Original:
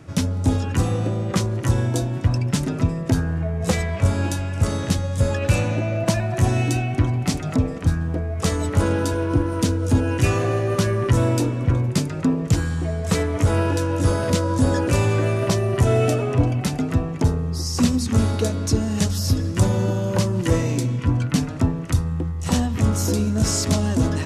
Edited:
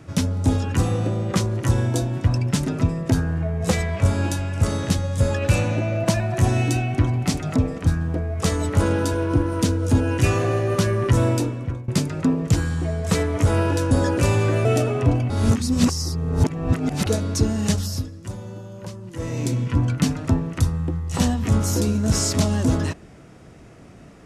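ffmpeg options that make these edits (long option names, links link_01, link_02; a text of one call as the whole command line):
ffmpeg -i in.wav -filter_complex "[0:a]asplit=8[link_01][link_02][link_03][link_04][link_05][link_06][link_07][link_08];[link_01]atrim=end=11.88,asetpts=PTS-STARTPTS,afade=type=out:start_time=11.29:duration=0.59:silence=0.125893[link_09];[link_02]atrim=start=11.88:end=13.912,asetpts=PTS-STARTPTS,afade=type=in:duration=0.004:curve=hsin:silence=0.125893[link_10];[link_03]atrim=start=14.608:end=15.352[link_11];[link_04]atrim=start=15.968:end=16.622[link_12];[link_05]atrim=start=16.618:end=18.382,asetpts=PTS-STARTPTS,areverse[link_13];[link_06]atrim=start=18.378:end=19.43,asetpts=PTS-STARTPTS,afade=type=out:start_time=0.682:duration=0.37:silence=0.188365[link_14];[link_07]atrim=start=19.43:end=20.48,asetpts=PTS-STARTPTS,volume=-14.5dB[link_15];[link_08]atrim=start=20.48,asetpts=PTS-STARTPTS,afade=type=in:duration=0.37:silence=0.188365[link_16];[link_09][link_10]concat=n=2:v=0:a=1[link_17];[link_17][link_11]acrossfade=duration=0.004:curve1=hsin:curve2=hsin[link_18];[link_18][link_12]acrossfade=duration=0.004:curve1=hsin:curve2=hsin[link_19];[link_19][link_13]acrossfade=duration=0.004:curve1=hsin:curve2=hsin[link_20];[link_14][link_15][link_16]concat=n=3:v=0:a=1[link_21];[link_20][link_21]acrossfade=duration=0.004:curve1=hsin:curve2=hsin" out.wav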